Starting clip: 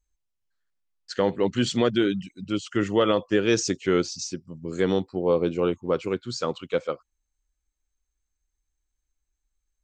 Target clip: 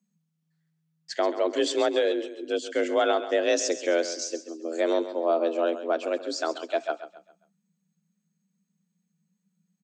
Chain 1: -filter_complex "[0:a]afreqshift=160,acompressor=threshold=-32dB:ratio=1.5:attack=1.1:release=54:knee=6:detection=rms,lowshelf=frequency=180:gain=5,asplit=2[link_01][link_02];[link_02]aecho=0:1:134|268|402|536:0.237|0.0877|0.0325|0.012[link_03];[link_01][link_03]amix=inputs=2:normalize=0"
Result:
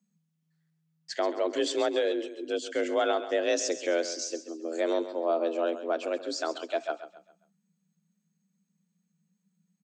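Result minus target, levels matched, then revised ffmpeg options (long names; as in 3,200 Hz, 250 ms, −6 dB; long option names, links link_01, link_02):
downward compressor: peak gain reduction +3.5 dB
-filter_complex "[0:a]afreqshift=160,acompressor=threshold=-22dB:ratio=1.5:attack=1.1:release=54:knee=6:detection=rms,lowshelf=frequency=180:gain=5,asplit=2[link_01][link_02];[link_02]aecho=0:1:134|268|402|536:0.237|0.0877|0.0325|0.012[link_03];[link_01][link_03]amix=inputs=2:normalize=0"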